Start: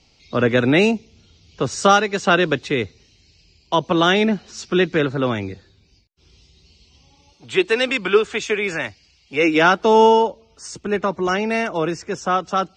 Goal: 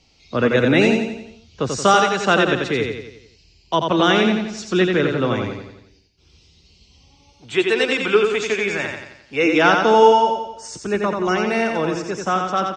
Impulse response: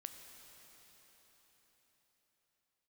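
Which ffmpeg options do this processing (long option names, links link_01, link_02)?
-af "aecho=1:1:88|176|264|352|440|528:0.596|0.292|0.143|0.0701|0.0343|0.0168,volume=-1dB"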